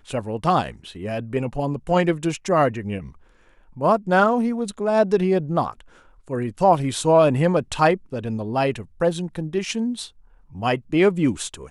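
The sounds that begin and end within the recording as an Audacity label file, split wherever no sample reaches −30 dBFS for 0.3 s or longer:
3.780000	5.800000	sound
6.300000	10.050000	sound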